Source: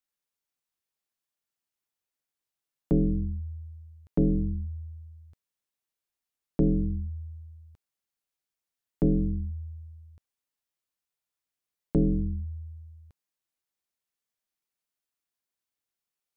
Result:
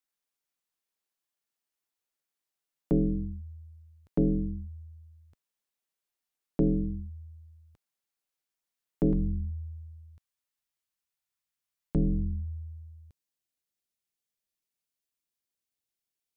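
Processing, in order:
parametric band 70 Hz −7 dB 1.8 octaves, from 0:09.13 410 Hz, from 0:12.48 1,100 Hz

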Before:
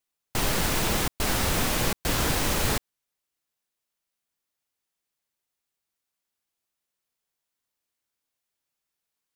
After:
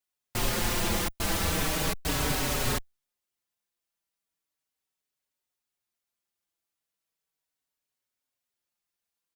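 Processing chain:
barber-pole flanger 5 ms −0.37 Hz

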